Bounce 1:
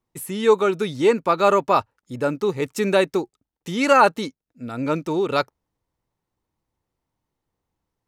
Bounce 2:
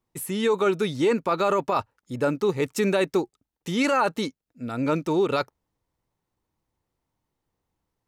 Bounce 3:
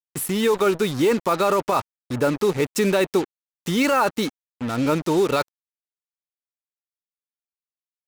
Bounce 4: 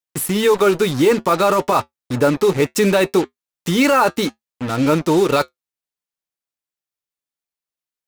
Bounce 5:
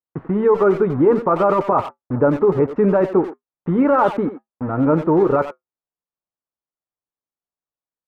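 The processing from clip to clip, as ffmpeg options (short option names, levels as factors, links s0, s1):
-af "alimiter=limit=0.2:level=0:latency=1:release=14"
-filter_complex "[0:a]asplit=2[s0][s1];[s1]acompressor=threshold=0.0398:ratio=6,volume=1[s2];[s0][s2]amix=inputs=2:normalize=0,acrusher=bits=4:mix=0:aa=0.5"
-af "flanger=delay=6.1:depth=1:regen=-68:speed=0.61:shape=triangular,volume=2.82"
-filter_complex "[0:a]lowpass=f=1300:w=0.5412,lowpass=f=1300:w=1.3066,asplit=2[s0][s1];[s1]adelay=90,highpass=300,lowpass=3400,asoftclip=type=hard:threshold=0.178,volume=0.316[s2];[s0][s2]amix=inputs=2:normalize=0"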